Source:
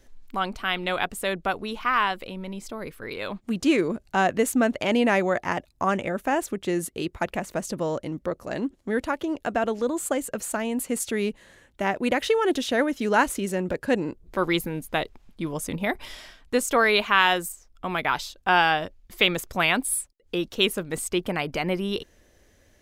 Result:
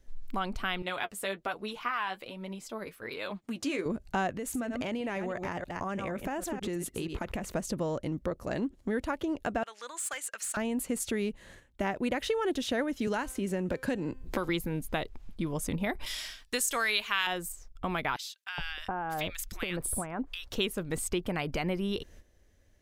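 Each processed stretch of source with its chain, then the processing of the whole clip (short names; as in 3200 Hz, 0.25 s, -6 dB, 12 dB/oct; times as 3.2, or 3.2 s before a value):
0.82–3.86 HPF 410 Hz 6 dB/oct + flange 1.2 Hz, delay 4.6 ms, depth 6.8 ms, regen +34%
4.37–7.52 reverse delay 0.159 s, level -11 dB + compressor 4:1, threshold -31 dBFS
9.63–10.57 Chebyshev band-pass 1500–10000 Hz + overloaded stage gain 29.5 dB
13.07–14.49 resonator 260 Hz, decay 0.46 s, mix 40% + three-band squash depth 100%
16.06–17.27 tilt shelf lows -9.5 dB, about 1400 Hz + de-hum 435.5 Hz, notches 29
18.16–20.51 compressor, threshold -26 dBFS + bands offset in time highs, lows 0.42 s, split 1500 Hz
whole clip: gate -52 dBFS, range -11 dB; low shelf 130 Hz +9.5 dB; compressor 2.5:1, threshold -31 dBFS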